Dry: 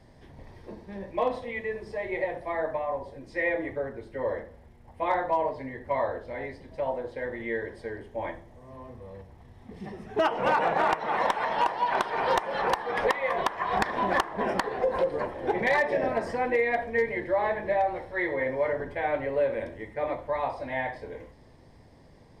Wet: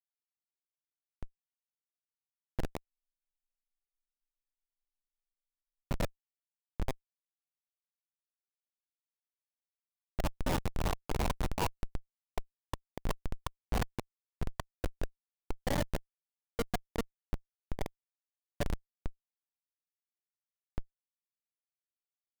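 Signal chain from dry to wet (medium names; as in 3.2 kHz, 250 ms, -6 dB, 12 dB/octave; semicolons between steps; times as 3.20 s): local Wiener filter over 41 samples; high-pass 360 Hz 12 dB/octave; in parallel at +2 dB: compression 16:1, threshold -38 dBFS, peak gain reduction 19 dB; on the sum: painted sound fall, 5.41–6.93 s, 1–4.6 kHz -37 dBFS; random-step tremolo, depth 80%; Schmitt trigger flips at -21 dBFS; spectral freeze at 2.86 s, 3.00 s; tape noise reduction on one side only decoder only; trim +5 dB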